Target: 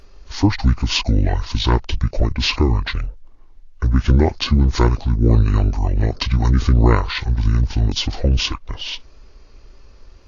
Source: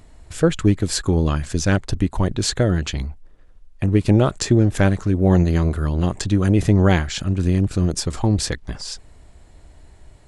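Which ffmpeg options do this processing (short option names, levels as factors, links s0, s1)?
-af "equalizer=f=280:t=o:w=0.58:g=-11.5,asetrate=26990,aresample=44100,atempo=1.63392,volume=1.58" -ar 44100 -c:a libvorbis -b:a 32k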